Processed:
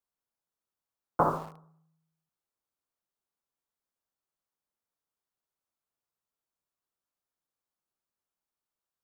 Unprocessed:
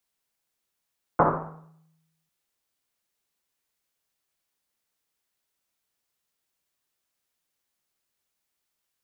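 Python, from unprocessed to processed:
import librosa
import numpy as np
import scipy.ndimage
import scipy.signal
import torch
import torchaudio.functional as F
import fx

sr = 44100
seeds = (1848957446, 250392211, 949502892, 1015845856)

p1 = fx.high_shelf_res(x, sr, hz=1600.0, db=-6.5, q=1.5)
p2 = fx.quant_dither(p1, sr, seeds[0], bits=6, dither='none')
p3 = p1 + (p2 * 10.0 ** (-9.0 / 20.0))
y = p3 * 10.0 ** (-7.5 / 20.0)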